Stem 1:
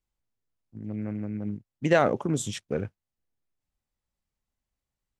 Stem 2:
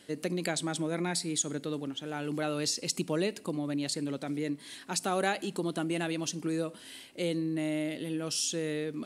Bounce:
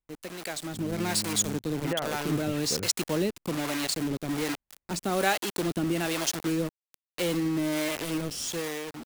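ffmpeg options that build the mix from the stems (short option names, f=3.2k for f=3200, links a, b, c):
-filter_complex "[0:a]lowpass=f=2.6k:w=0.5412,lowpass=f=2.6k:w=1.3066,acompressor=threshold=-23dB:ratio=6,volume=-4.5dB[a];[1:a]acrusher=bits=5:mix=0:aa=0.000001,acrossover=split=420[b][c];[b]aeval=exprs='val(0)*(1-0.7/2+0.7/2*cos(2*PI*1.2*n/s))':c=same[d];[c]aeval=exprs='val(0)*(1-0.7/2-0.7/2*cos(2*PI*1.2*n/s))':c=same[e];[d][e]amix=inputs=2:normalize=0,dynaudnorm=f=340:g=5:m=10.5dB,volume=-4dB[f];[a][f]amix=inputs=2:normalize=0"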